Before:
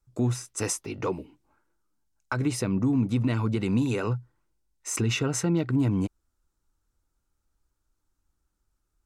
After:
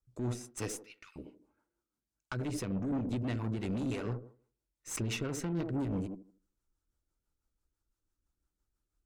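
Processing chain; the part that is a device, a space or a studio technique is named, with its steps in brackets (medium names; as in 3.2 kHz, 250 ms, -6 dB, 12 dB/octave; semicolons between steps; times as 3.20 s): 0.75–1.16 s: steep high-pass 1.5 kHz 36 dB/octave; feedback echo behind a band-pass 79 ms, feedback 30%, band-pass 410 Hz, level -5 dB; overdriven rotary cabinet (valve stage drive 26 dB, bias 0.6; rotary cabinet horn 6 Hz); trim -3 dB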